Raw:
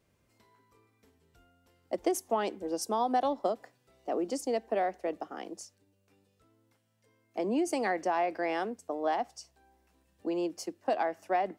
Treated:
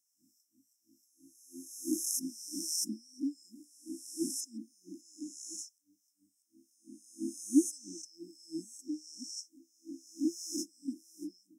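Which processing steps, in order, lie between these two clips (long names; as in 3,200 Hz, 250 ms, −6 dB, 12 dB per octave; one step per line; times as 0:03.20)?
peak hold with a rise ahead of every peak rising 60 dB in 1.51 s
auto-filter high-pass sine 3 Hz 290–3,200 Hz
linear-phase brick-wall band-stop 330–5,100 Hz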